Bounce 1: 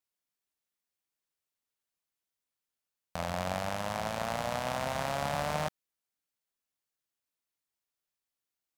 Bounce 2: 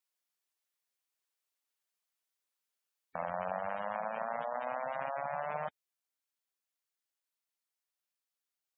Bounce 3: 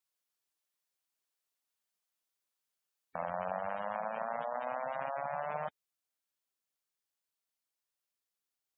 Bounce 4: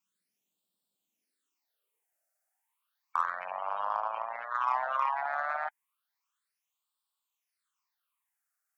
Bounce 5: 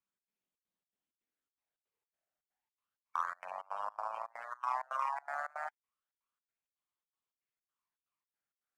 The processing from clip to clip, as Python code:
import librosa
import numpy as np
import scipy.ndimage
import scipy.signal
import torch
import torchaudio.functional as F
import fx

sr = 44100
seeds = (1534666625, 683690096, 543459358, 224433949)

y1 = fx.highpass(x, sr, hz=490.0, slope=6)
y1 = fx.spec_gate(y1, sr, threshold_db=-15, keep='strong')
y1 = fx.rider(y1, sr, range_db=10, speed_s=0.5)
y2 = fx.peak_eq(y1, sr, hz=2100.0, db=-2.0, octaves=0.77)
y3 = fx.filter_sweep_highpass(y2, sr, from_hz=190.0, to_hz=1100.0, start_s=0.99, end_s=2.93, q=3.9)
y3 = fx.phaser_stages(y3, sr, stages=8, low_hz=130.0, high_hz=2000.0, hz=0.32, feedback_pct=25)
y3 = fx.cheby_harmonics(y3, sr, harmonics=(5, 7), levels_db=(-33, -31), full_scale_db=-21.0)
y3 = F.gain(torch.from_numpy(y3), 6.0).numpy()
y4 = scipy.ndimage.median_filter(y3, 9, mode='constant')
y4 = fx.step_gate(y4, sr, bpm=162, pattern='xx.xxx.xx.', floor_db=-24.0, edge_ms=4.5)
y4 = F.gain(torch.from_numpy(y4), -5.5).numpy()